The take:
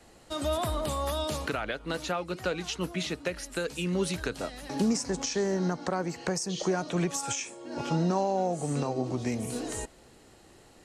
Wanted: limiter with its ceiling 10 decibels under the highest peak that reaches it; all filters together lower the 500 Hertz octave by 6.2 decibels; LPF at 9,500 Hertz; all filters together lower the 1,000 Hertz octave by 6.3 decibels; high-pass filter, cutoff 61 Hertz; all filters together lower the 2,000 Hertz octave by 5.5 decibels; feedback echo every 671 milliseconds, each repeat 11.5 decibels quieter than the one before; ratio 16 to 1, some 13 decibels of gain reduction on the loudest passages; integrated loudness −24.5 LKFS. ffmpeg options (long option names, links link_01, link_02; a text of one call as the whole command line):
ffmpeg -i in.wav -af "highpass=61,lowpass=9500,equalizer=frequency=500:width_type=o:gain=-7,equalizer=frequency=1000:width_type=o:gain=-4.5,equalizer=frequency=2000:width_type=o:gain=-5.5,acompressor=threshold=-37dB:ratio=16,alimiter=level_in=10dB:limit=-24dB:level=0:latency=1,volume=-10dB,aecho=1:1:671|1342|2013:0.266|0.0718|0.0194,volume=19dB" out.wav